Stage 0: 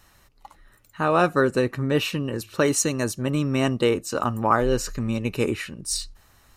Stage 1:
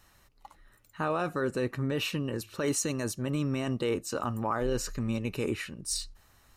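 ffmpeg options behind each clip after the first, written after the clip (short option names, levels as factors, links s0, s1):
-af "alimiter=limit=0.178:level=0:latency=1:release=27,volume=0.562"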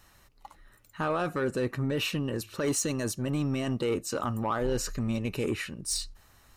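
-af "asoftclip=type=tanh:threshold=0.075,volume=1.33"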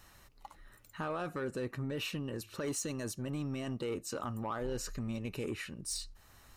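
-af "acompressor=threshold=0.00355:ratio=1.5"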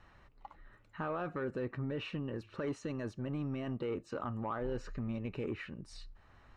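-af "lowpass=2300"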